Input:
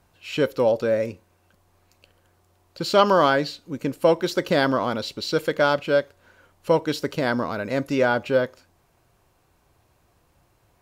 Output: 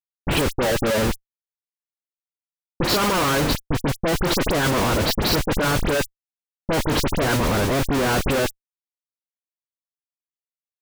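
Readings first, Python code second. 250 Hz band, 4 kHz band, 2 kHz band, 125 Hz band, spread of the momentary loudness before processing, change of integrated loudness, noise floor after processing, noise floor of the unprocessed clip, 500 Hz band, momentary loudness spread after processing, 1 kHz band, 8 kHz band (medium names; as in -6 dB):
+3.0 dB, +5.5 dB, +2.5 dB, +8.0 dB, 11 LU, +1.5 dB, under -85 dBFS, -64 dBFS, -2.5 dB, 6 LU, 0.0 dB, +13.5 dB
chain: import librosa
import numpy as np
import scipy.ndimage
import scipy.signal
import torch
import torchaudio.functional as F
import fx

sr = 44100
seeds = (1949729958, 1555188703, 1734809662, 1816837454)

y = fx.spec_quant(x, sr, step_db=30)
y = fx.schmitt(y, sr, flips_db=-31.0)
y = fx.dispersion(y, sr, late='highs', ms=49.0, hz=2900.0)
y = y * 10.0 ** (5.5 / 20.0)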